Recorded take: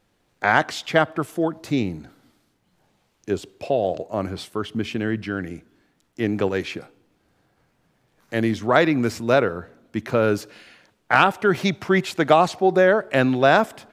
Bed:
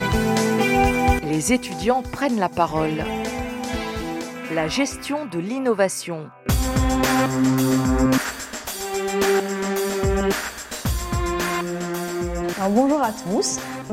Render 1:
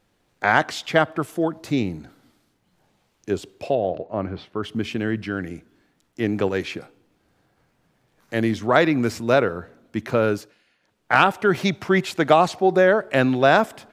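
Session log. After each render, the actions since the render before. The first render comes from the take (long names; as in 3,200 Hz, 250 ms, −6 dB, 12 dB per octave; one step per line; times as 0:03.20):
0:03.75–0:04.63: high-frequency loss of the air 290 metres
0:10.13–0:11.23: duck −16 dB, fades 0.43 s equal-power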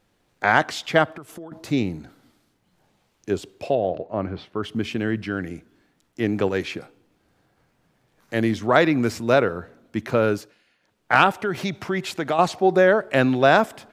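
0:01.05–0:01.52: downward compressor 10 to 1, threshold −34 dBFS
0:11.37–0:12.39: downward compressor 2 to 1, threshold −25 dBFS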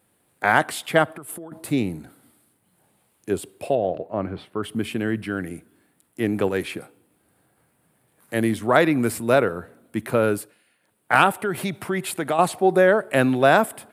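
high-pass filter 83 Hz
high shelf with overshoot 7,600 Hz +9 dB, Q 3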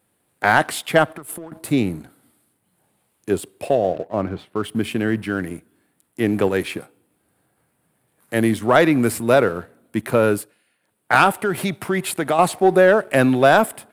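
leveller curve on the samples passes 1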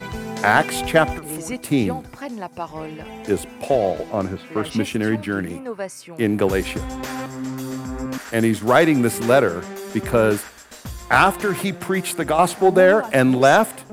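mix in bed −10 dB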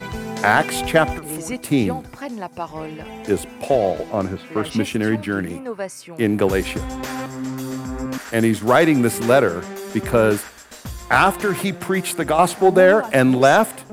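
level +1 dB
brickwall limiter −3 dBFS, peak gain reduction 2 dB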